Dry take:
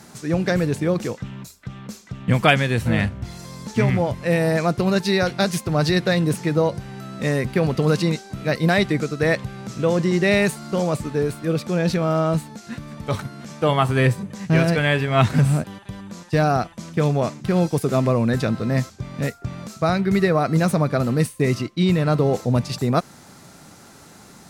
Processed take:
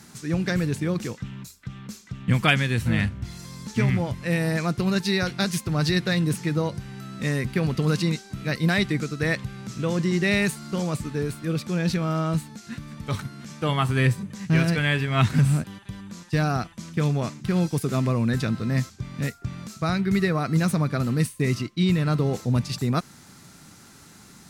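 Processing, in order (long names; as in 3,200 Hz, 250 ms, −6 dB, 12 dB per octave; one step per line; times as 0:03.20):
parametric band 610 Hz −9 dB 1.4 octaves
level −1.5 dB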